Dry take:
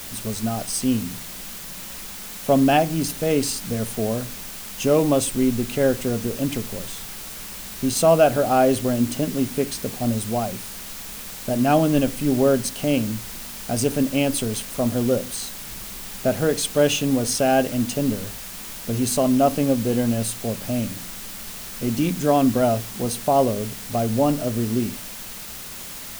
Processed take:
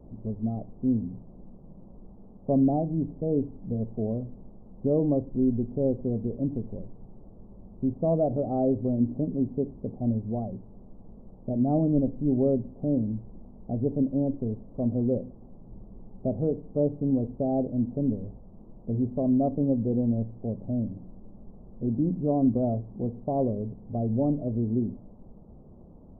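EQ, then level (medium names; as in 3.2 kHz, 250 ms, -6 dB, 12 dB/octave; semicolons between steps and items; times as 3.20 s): Gaussian low-pass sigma 15 samples; -2.5 dB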